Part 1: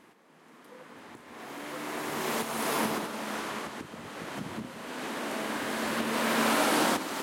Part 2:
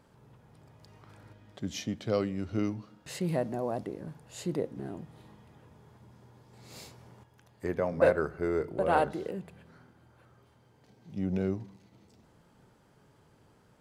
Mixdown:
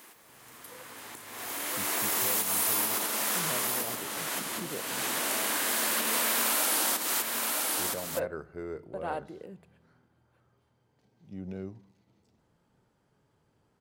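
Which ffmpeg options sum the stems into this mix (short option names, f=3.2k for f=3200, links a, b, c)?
-filter_complex "[0:a]aemphasis=mode=production:type=riaa,volume=2dB,asplit=2[a][b];[b]volume=-11dB[c];[1:a]adelay=150,volume=-8.5dB[d];[c]aecho=0:1:970:1[e];[a][d][e]amix=inputs=3:normalize=0,acompressor=threshold=-25dB:ratio=5"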